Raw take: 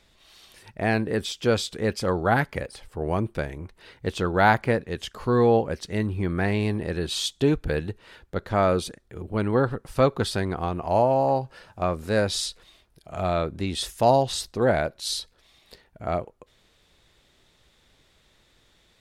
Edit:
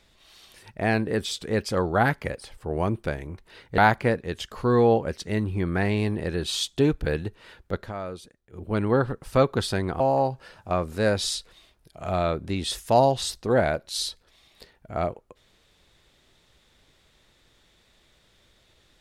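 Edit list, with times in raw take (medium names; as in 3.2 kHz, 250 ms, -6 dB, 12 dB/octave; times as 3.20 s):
1.31–1.62 s: delete
4.09–4.41 s: delete
8.43–9.27 s: dip -13 dB, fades 0.13 s
10.63–11.11 s: delete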